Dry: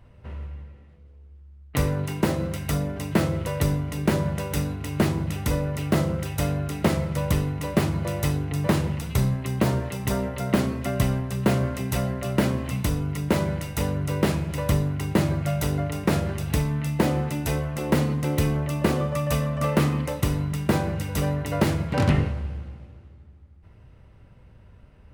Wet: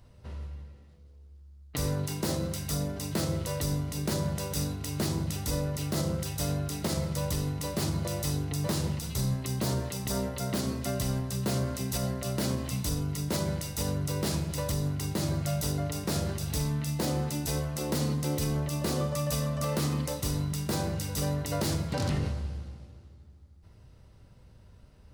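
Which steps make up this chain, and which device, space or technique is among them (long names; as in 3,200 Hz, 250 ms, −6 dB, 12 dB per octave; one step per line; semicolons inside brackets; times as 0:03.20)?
over-bright horn tweeter (high shelf with overshoot 3,400 Hz +9 dB, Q 1.5; brickwall limiter −16 dBFS, peak gain reduction 10.5 dB)
level −4 dB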